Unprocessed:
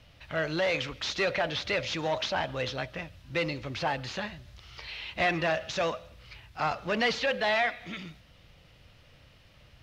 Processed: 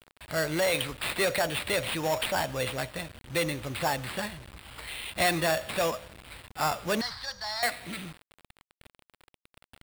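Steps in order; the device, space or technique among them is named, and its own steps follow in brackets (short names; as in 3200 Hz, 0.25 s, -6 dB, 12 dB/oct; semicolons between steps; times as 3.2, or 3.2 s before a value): early 8-bit sampler (sample-rate reducer 6200 Hz, jitter 0%; bit-crush 8-bit); 7.01–7.63 EQ curve 110 Hz 0 dB, 200 Hz -21 dB, 450 Hz -28 dB, 910 Hz -6 dB, 1700 Hz -9 dB, 2700 Hz -22 dB, 4900 Hz +6 dB, 7300 Hz -16 dB, 10000 Hz -21 dB; gain +1.5 dB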